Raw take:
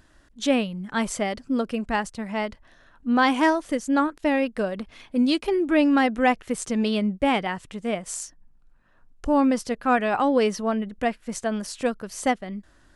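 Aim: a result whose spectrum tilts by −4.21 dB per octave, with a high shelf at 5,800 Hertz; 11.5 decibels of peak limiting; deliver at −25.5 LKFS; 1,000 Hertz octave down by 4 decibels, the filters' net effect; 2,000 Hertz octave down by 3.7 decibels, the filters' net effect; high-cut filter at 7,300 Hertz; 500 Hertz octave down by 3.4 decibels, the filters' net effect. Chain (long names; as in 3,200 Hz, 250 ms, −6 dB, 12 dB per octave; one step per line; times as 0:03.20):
low-pass filter 7,300 Hz
parametric band 500 Hz −3 dB
parametric band 1,000 Hz −3.5 dB
parametric band 2,000 Hz −4 dB
high-shelf EQ 5,800 Hz +6.5 dB
level +6 dB
brickwall limiter −16 dBFS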